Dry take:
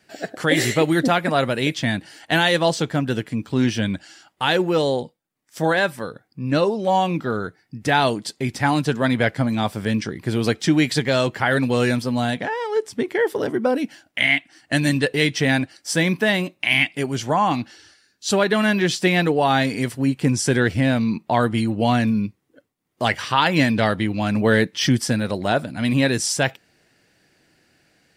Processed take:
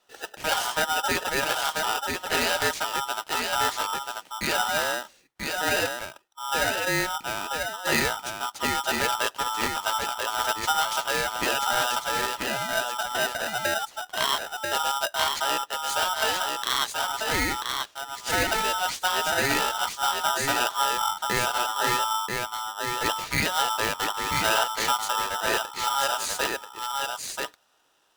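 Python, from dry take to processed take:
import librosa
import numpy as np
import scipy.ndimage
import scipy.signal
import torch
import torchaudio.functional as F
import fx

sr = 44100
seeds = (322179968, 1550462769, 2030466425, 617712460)

p1 = x + fx.echo_single(x, sr, ms=987, db=-4.0, dry=0)
p2 = p1 * np.sign(np.sin(2.0 * np.pi * 1100.0 * np.arange(len(p1)) / sr))
y = p2 * librosa.db_to_amplitude(-7.5)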